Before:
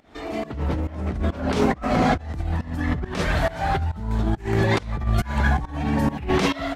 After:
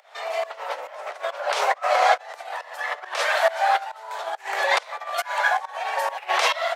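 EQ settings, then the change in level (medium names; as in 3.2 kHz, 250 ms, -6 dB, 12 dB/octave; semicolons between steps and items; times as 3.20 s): steep high-pass 550 Hz 48 dB/octave; +5.0 dB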